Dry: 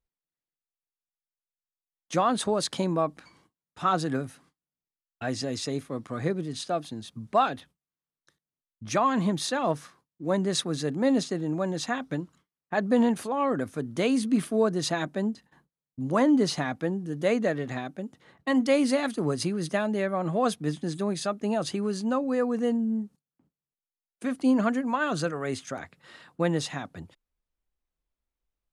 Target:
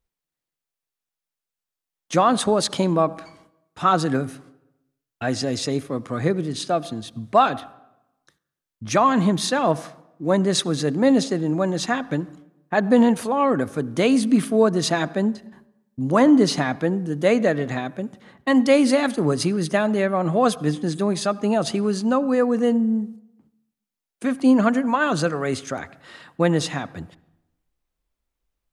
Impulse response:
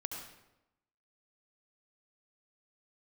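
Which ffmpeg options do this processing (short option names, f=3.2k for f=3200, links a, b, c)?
-filter_complex "[0:a]asplit=2[a][b];[1:a]atrim=start_sample=2205,highshelf=f=4.5k:g=-11[c];[b][c]afir=irnorm=-1:irlink=0,volume=-14dB[d];[a][d]amix=inputs=2:normalize=0,volume=5.5dB"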